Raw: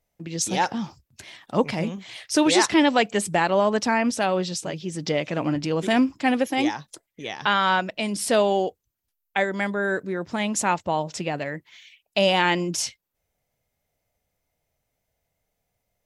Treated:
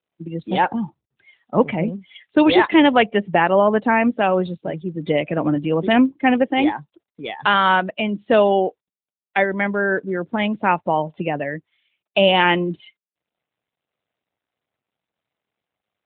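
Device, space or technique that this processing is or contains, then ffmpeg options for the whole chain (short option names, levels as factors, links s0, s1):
mobile call with aggressive noise cancelling: -af "highpass=130,afftdn=nr=22:nf=-33,volume=1.88" -ar 8000 -c:a libopencore_amrnb -b:a 12200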